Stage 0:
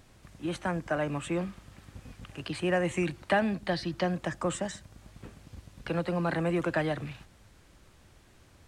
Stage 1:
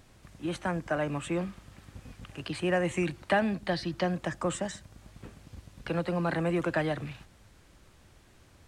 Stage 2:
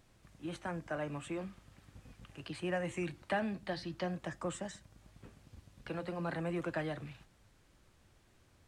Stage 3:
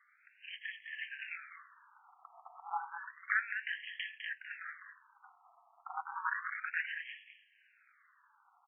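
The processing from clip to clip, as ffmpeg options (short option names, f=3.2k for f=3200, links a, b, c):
-af anull
-af "flanger=delay=5.8:depth=3.2:regen=-76:speed=0.43:shape=sinusoidal,volume=-4dB"
-filter_complex "[0:a]aeval=exprs='val(0)*sin(2*PI*110*n/s)':c=same,asplit=2[a][b];[b]adelay=204.1,volume=-7dB,highshelf=f=4k:g=-4.59[c];[a][c]amix=inputs=2:normalize=0,afftfilt=real='re*between(b*sr/1024,940*pow(2400/940,0.5+0.5*sin(2*PI*0.31*pts/sr))/1.41,940*pow(2400/940,0.5+0.5*sin(2*PI*0.31*pts/sr))*1.41)':imag='im*between(b*sr/1024,940*pow(2400/940,0.5+0.5*sin(2*PI*0.31*pts/sr))/1.41,940*pow(2400/940,0.5+0.5*sin(2*PI*0.31*pts/sr))*1.41)':win_size=1024:overlap=0.75,volume=12dB"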